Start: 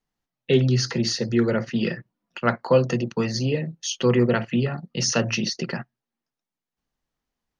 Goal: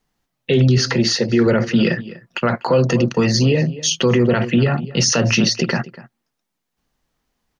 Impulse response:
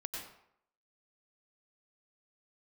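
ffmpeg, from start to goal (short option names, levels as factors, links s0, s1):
-filter_complex "[0:a]asettb=1/sr,asplit=3[s0][s1][s2];[s0]atrim=end=0.784[s3];[s1]atrim=start=0.78:end=1.46,asetpts=PTS-STARTPTS,afade=t=in:d=0.004:c=qsin,afade=t=out:st=0.676:d=0.004:c=qsin,bass=f=250:g=-5,treble=f=4000:g=-5[s4];[s2]atrim=start=1.456[s5];[s3][s4]acrossfade=d=0.004:c1=hsin:c2=qsin[s6];[s6][s5]acrossfade=d=0.004:c1=qsin:c2=hsin,asplit=2[s7][s8];[s8]adelay=244.9,volume=0.1,highshelf=f=4000:g=-5.51[s9];[s7][s9]amix=inputs=2:normalize=0,alimiter=level_in=7.08:limit=0.891:release=50:level=0:latency=1,volume=0.501"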